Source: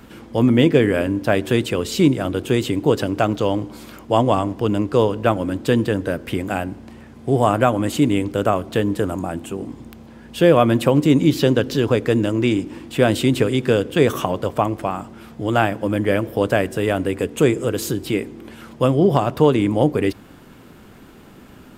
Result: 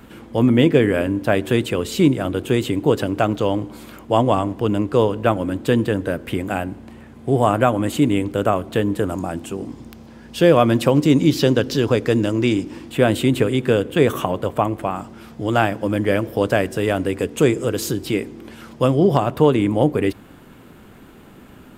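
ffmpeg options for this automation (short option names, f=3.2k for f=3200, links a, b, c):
-af "asetnsamples=n=441:p=0,asendcmd='9.1 equalizer g 4.5;12.9 equalizer g -6.5;14.96 equalizer g 2.5;19.17 equalizer g -5',equalizer=f=5.3k:t=o:w=0.66:g=-4.5"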